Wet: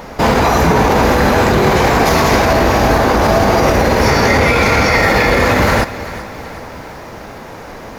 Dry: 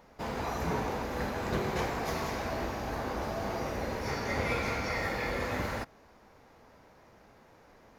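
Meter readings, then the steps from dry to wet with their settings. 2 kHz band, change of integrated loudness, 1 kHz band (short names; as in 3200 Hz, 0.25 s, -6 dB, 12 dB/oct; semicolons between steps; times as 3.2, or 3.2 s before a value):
+22.0 dB, +22.0 dB, +22.5 dB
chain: maximiser +29 dB; lo-fi delay 0.379 s, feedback 55%, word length 6-bit, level -15 dB; gain -2 dB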